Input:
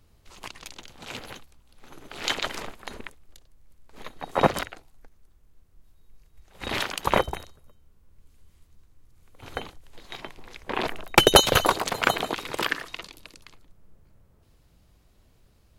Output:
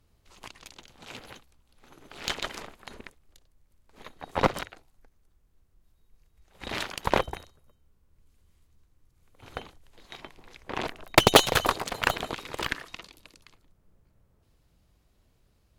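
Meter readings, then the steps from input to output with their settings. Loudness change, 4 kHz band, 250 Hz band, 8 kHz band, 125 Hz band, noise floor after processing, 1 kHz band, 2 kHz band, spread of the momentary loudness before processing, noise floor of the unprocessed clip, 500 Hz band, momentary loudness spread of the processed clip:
-2.0 dB, -4.0 dB, -2.0 dB, -3.5 dB, -2.0 dB, -67 dBFS, -3.0 dB, -2.5 dB, 24 LU, -61 dBFS, -3.0 dB, 25 LU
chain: added harmonics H 3 -17 dB, 7 -43 dB, 8 -24 dB, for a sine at -2.5 dBFS; Doppler distortion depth 0.88 ms

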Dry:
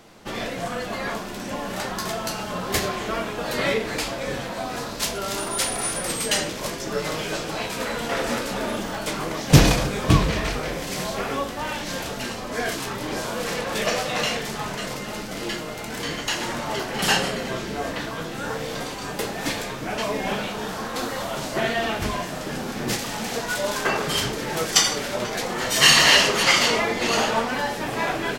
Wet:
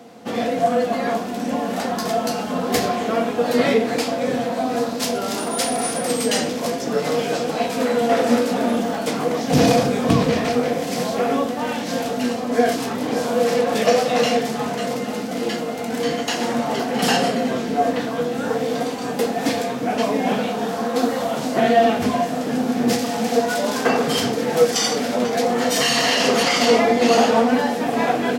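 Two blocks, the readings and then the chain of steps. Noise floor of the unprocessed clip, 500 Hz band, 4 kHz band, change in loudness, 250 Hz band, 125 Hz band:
-33 dBFS, +8.5 dB, -2.0 dB, +3.5 dB, +8.5 dB, -2.5 dB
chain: HPF 91 Hz 24 dB/oct; notches 60/120 Hz; dynamic EQ 5100 Hz, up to +3 dB, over -39 dBFS, Q 3.7; limiter -10.5 dBFS, peak gain reduction 10.5 dB; small resonant body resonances 250/480/700 Hz, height 16 dB, ringing for 80 ms

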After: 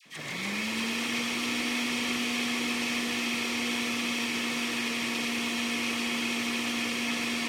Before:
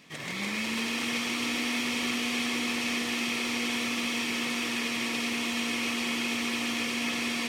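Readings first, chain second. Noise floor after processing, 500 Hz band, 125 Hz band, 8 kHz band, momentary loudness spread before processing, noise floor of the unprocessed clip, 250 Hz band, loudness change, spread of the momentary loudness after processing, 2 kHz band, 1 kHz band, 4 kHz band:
-35 dBFS, 0.0 dB, 0.0 dB, 0.0 dB, 1 LU, -34 dBFS, 0.0 dB, 0.0 dB, 1 LU, 0.0 dB, 0.0 dB, 0.0 dB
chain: dispersion lows, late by 60 ms, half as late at 1100 Hz

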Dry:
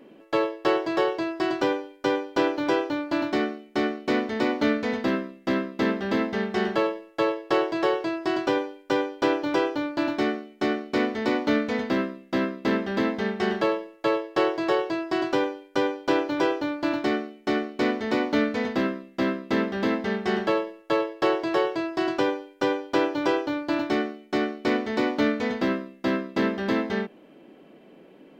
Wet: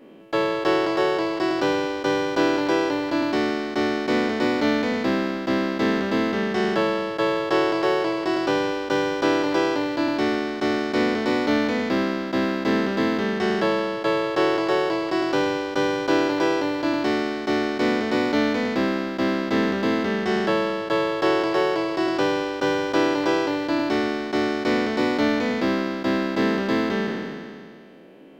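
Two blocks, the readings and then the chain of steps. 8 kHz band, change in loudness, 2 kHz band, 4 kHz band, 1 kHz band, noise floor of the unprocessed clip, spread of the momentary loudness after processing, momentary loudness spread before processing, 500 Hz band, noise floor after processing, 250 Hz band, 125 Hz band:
n/a, +3.5 dB, +4.0 dB, +5.0 dB, +3.5 dB, -52 dBFS, 3 LU, 4 LU, +3.0 dB, -32 dBFS, +3.5 dB, +4.5 dB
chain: spectral trails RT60 2.14 s

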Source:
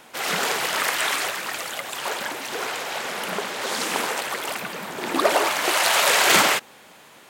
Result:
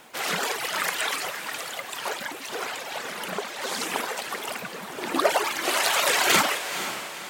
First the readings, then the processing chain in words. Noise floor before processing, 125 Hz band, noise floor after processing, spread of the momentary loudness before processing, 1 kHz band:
-49 dBFS, -2.5 dB, -38 dBFS, 12 LU, -3.5 dB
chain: reverb removal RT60 1.6 s; diffused feedback echo 0.495 s, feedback 44%, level -10 dB; added noise blue -66 dBFS; gain -1.5 dB

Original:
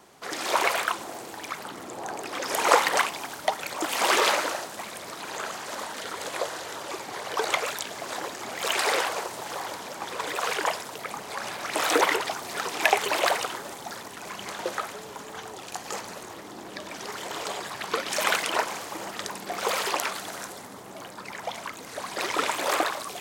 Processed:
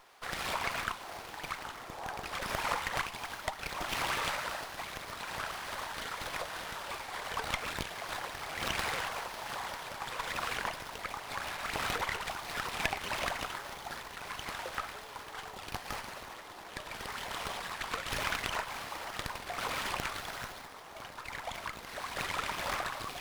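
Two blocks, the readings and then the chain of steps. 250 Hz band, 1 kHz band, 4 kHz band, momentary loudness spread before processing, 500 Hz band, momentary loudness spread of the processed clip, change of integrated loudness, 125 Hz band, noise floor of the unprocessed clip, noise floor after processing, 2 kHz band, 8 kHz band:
-9.5 dB, -8.5 dB, -7.5 dB, 15 LU, -12.5 dB, 9 LU, -9.0 dB, +2.5 dB, -42 dBFS, -48 dBFS, -7.0 dB, -11.0 dB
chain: compressor 3:1, threshold -29 dBFS, peak gain reduction 12 dB; Bessel high-pass 920 Hz, order 2; running maximum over 5 samples; gain -1 dB

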